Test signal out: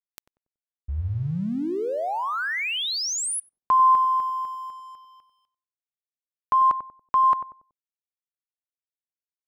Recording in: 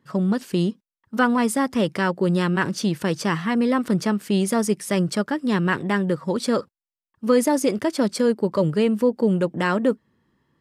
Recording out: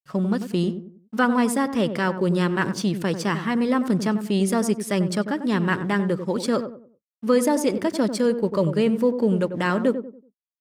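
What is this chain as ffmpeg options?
-filter_complex "[0:a]aeval=exprs='sgn(val(0))*max(abs(val(0))-0.00282,0)':c=same,asplit=2[a][b];[b]adelay=94,lowpass=f=800:p=1,volume=-8dB,asplit=2[c][d];[d]adelay=94,lowpass=f=800:p=1,volume=0.37,asplit=2[e][f];[f]adelay=94,lowpass=f=800:p=1,volume=0.37,asplit=2[g][h];[h]adelay=94,lowpass=f=800:p=1,volume=0.37[i];[a][c][e][g][i]amix=inputs=5:normalize=0,volume=-1dB"

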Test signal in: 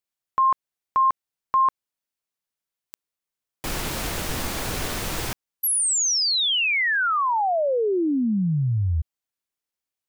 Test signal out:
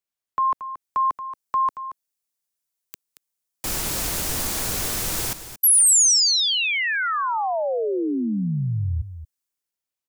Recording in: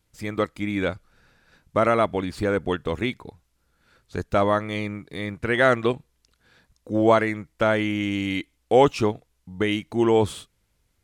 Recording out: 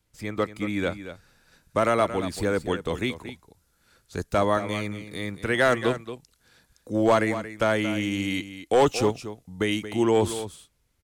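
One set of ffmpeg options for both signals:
-filter_complex "[0:a]acrossover=split=330|450|5200[a][b][c][d];[d]dynaudnorm=f=140:g=11:m=9.5dB[e];[a][b][c][e]amix=inputs=4:normalize=0,volume=10.5dB,asoftclip=hard,volume=-10.5dB,aecho=1:1:228:0.251,volume=-2dB"

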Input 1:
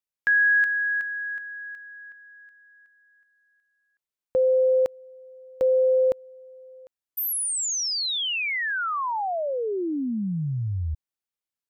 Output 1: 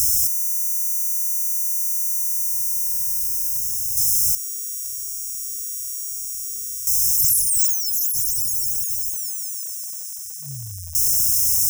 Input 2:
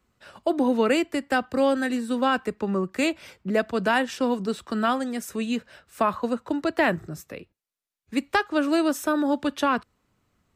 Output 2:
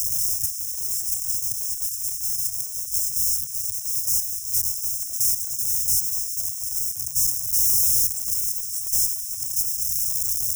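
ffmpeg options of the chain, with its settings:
-filter_complex "[0:a]aeval=exprs='val(0)+0.5*0.0473*sgn(val(0))':c=same,aemphasis=mode=production:type=riaa,acrossover=split=4400[a][b];[b]aeval=exprs='(mod(4.22*val(0)+1,2)-1)/4.22':c=same[c];[a][c]amix=inputs=2:normalize=0,afftfilt=real='re*(1-between(b*sr/4096,150,5100))':imag='im*(1-between(b*sr/4096,150,5100))':win_size=4096:overlap=0.75"

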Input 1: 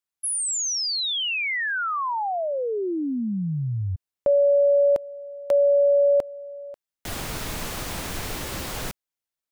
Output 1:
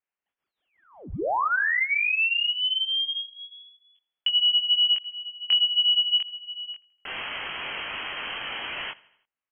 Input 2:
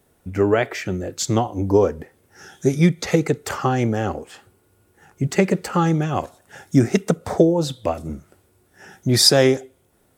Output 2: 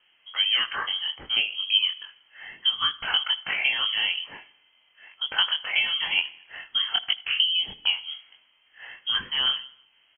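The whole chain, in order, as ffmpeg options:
-filter_complex "[0:a]highpass=f=260:w=0.5412,highpass=f=260:w=1.3066,lowshelf=f=360:g=-7,acompressor=threshold=-22dB:ratio=12:attack=16:release=575:knee=6:detection=peak,flanger=delay=20:depth=2.7:speed=2.8,asplit=2[a][b];[b]aecho=0:1:80|160|240|320:0.0794|0.0437|0.024|0.0132[c];[a][c]amix=inputs=2:normalize=0,lowpass=f=3k:t=q:w=0.5098,lowpass=f=3k:t=q:w=0.6013,lowpass=f=3k:t=q:w=0.9,lowpass=f=3k:t=q:w=2.563,afreqshift=-3500,volume=6.5dB"

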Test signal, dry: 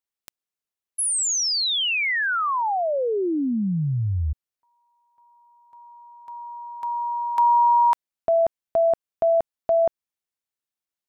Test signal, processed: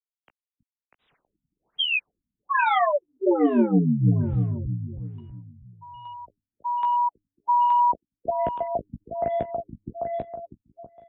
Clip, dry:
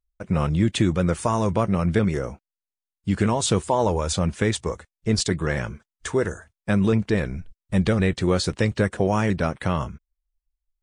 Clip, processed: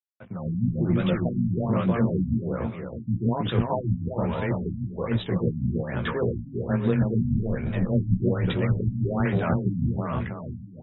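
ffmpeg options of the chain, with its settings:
-filter_complex "[0:a]asplit=2[a][b];[b]asoftclip=type=tanh:threshold=-15dB,volume=-4.5dB[c];[a][c]amix=inputs=2:normalize=0,afreqshift=15,areverse,acompressor=threshold=-25dB:ratio=16:attack=0.2:release=145:knee=1:detection=peak,areverse,bandreject=f=101.7:t=h:w=4,bandreject=f=203.4:t=h:w=4,bandreject=f=305.1:t=h:w=4,bandreject=f=406.8:t=h:w=4,acrossover=split=1000[d][e];[d]aeval=exprs='val(0)*(1-0.5/2+0.5/2*cos(2*PI*6.4*n/s))':c=same[f];[e]aeval=exprs='val(0)*(1-0.5/2-0.5/2*cos(2*PI*6.4*n/s))':c=same[g];[f][g]amix=inputs=2:normalize=0,asplit=2[h][i];[i]adelay=17,volume=-6dB[j];[h][j]amix=inputs=2:normalize=0,aeval=exprs='sgn(val(0))*max(abs(val(0))-0.00133,0)':c=same,crystalizer=i=3:c=0,highshelf=f=2.5k:g=-7.5,aecho=1:1:322|644|966|1288|1610|1932:0.668|0.307|0.141|0.0651|0.0299|0.0138,dynaudnorm=f=110:g=9:m=16dB,afftfilt=real='re*lt(b*sr/1024,270*pow(4000/270,0.5+0.5*sin(2*PI*1.2*pts/sr)))':imag='im*lt(b*sr/1024,270*pow(4000/270,0.5+0.5*sin(2*PI*1.2*pts/sr)))':win_size=1024:overlap=0.75,volume=-6.5dB"

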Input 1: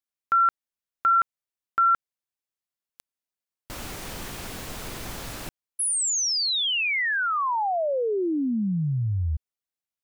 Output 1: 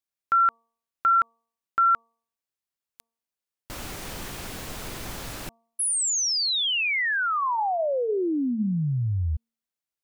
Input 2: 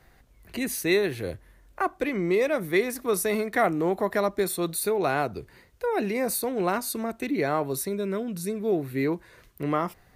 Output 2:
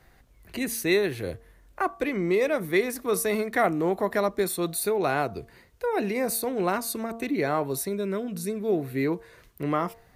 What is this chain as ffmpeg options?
-af "bandreject=f=229.4:t=h:w=4,bandreject=f=458.8:t=h:w=4,bandreject=f=688.2:t=h:w=4,bandreject=f=917.6:t=h:w=4,bandreject=f=1.147k:t=h:w=4"

